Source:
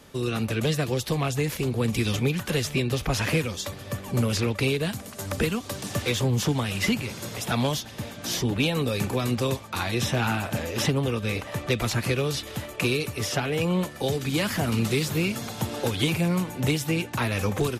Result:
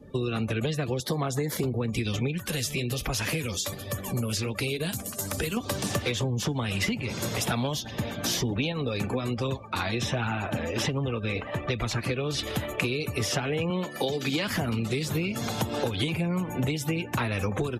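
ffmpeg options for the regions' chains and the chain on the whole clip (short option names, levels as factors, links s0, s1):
-filter_complex "[0:a]asettb=1/sr,asplit=3[s0][s1][s2];[s0]atrim=end=1.004[s3];[s1]atrim=start=1:end=1.64,asetpts=PTS-STARTPTS,afade=t=in:d=0.004:c=qsin,afade=t=out:st=0.636:d=0.004:c=qsin,highpass=140,equalizer=f=2600:t=o:w=0.37:g=-11.5,acompressor=mode=upward:threshold=0.0355:ratio=2.5:attack=3.2:release=140:knee=2.83:detection=peak[s4];[s2]atrim=start=1.636[s5];[s3][s4]acrossfade=d=0.004:c1=hsin:c2=qsin[s6];[s6][s5]acrossfade=d=0.004:c1=qsin:c2=hsin,asettb=1/sr,asplit=3[s7][s8][s9];[s7]atrim=end=2.384[s10];[s8]atrim=start=2.38:end=5.57,asetpts=PTS-STARTPTS,afade=t=in:d=0.004:c=qsin,afade=t=out:st=3.186:d=0.004:c=qsin,highshelf=f=4300:g=10,acompressor=threshold=0.0355:ratio=2:attack=3.2:release=140:knee=1:detection=peak,flanger=delay=1.5:depth=8.8:regen=-57:speed=1.3:shape=triangular[s11];[s9]atrim=start=5.566[s12];[s10][s11]acrossfade=d=0.004:c1=hsin:c2=qsin[s13];[s13][s12]acrossfade=d=0.004:c1=qsin:c2=hsin,asettb=1/sr,asplit=3[s14][s15][s16];[s14]atrim=end=8.724[s17];[s15]atrim=start=8.72:end=12.39,asetpts=PTS-STARTPTS,afade=t=in:d=0.004:c=qsin,afade=t=out:st=3.666:d=0.004:c=qsin,highshelf=f=8400:g=-3,flanger=delay=0.4:depth=4.3:regen=66:speed=1.3:shape=triangular[s18];[s16]atrim=start=12.386[s19];[s17][s18]acrossfade=d=0.004:c1=hsin:c2=qsin[s20];[s20][s19]acrossfade=d=0.004:c1=qsin:c2=hsin,asettb=1/sr,asplit=3[s21][s22][s23];[s21]atrim=end=13.704[s24];[s22]atrim=start=13.7:end=14.48,asetpts=PTS-STARTPTS,afade=t=in:d=0.004:c=qsin,afade=t=out:st=0.776:d=0.004:c=qsin,highpass=180,acrossover=split=5600[s25][s26];[s26]acompressor=threshold=0.00178:ratio=4:attack=1:release=60[s27];[s25][s27]amix=inputs=2:normalize=0,aemphasis=mode=production:type=50kf[s28];[s23]atrim=start=14.476[s29];[s24][s28]acrossfade=d=0.004:c1=hsin:c2=qsin[s30];[s30][s29]acrossfade=d=0.004:c1=qsin:c2=hsin,acompressor=threshold=0.0316:ratio=16,afftdn=nr=26:nf=-48,volume=2"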